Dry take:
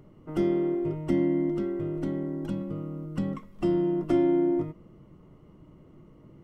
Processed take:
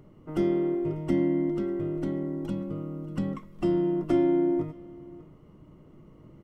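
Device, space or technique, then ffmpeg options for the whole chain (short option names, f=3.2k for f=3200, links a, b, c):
ducked delay: -filter_complex "[0:a]asettb=1/sr,asplit=3[a][b][c];[a]atrim=end=2.114[d];[b]atrim=start=2.11:end=2.58,asetpts=PTS-STARTPTS,afade=t=in:d=0.004:c=qsin,afade=t=out:st=0.466:d=0.004:c=qsin,bandreject=f=1.6k:w=9.8[e];[c]atrim=start=2.576[f];[d][e]acrossfade=d=0.004:c1=hsin:c2=qsin[g];[g][f]acrossfade=d=0.004:c1=qsin:c2=hsin,asplit=3[h][i][j];[i]adelay=593,volume=-6dB[k];[j]apad=whole_len=310024[l];[k][l]sidechaincompress=threshold=-44dB:ratio=8:attack=16:release=1140[m];[h][m]amix=inputs=2:normalize=0"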